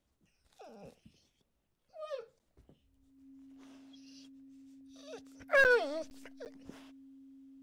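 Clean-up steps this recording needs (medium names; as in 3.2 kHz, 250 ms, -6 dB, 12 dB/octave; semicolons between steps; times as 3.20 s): band-stop 270 Hz, Q 30; interpolate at 2.39/5.64/6.10/6.45 s, 9 ms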